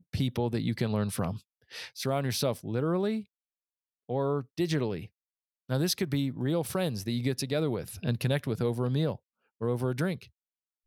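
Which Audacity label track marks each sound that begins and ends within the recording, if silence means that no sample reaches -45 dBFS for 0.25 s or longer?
1.710000	3.230000	sound
4.090000	5.060000	sound
5.690000	9.160000	sound
9.610000	10.250000	sound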